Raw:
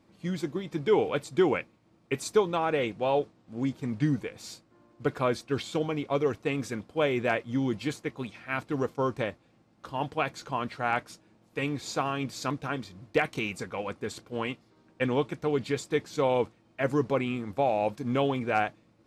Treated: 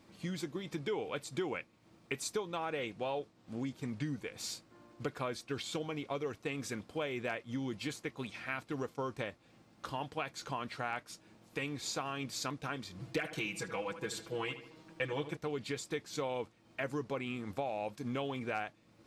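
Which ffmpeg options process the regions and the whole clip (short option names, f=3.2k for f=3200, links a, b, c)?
-filter_complex "[0:a]asettb=1/sr,asplit=3[a][b][c];[a]atrim=end=12.994[d];[b]atrim=start=12.99:end=15.37,asetpts=PTS-STARTPTS,afade=t=in:d=0.004:c=qsin,afade=t=out:st=2.376:d=0.004:c=qsin,aecho=1:1:6.1:0.99,atrim=end_sample=104958,asplit=2[e][f];[f]adelay=76,lowpass=f=2.7k:p=1,volume=-12dB,asplit=2[g][h];[h]adelay=76,lowpass=f=2.7k:p=1,volume=0.41,asplit=2[i][j];[j]adelay=76,lowpass=f=2.7k:p=1,volume=0.41,asplit=2[k][l];[l]adelay=76,lowpass=f=2.7k:p=1,volume=0.41[m];[e][g][i][k][m]amix=inputs=5:normalize=0,atrim=end_sample=104958[n];[c]atrim=start=15.366[o];[d][n]acrossfade=d=0.004:c1=hsin:c2=qsin[p];[p][o]acrossfade=d=0.004:c1=qsin:c2=hsin,tiltshelf=f=1.5k:g=-3,acompressor=threshold=-42dB:ratio=3,volume=3.5dB"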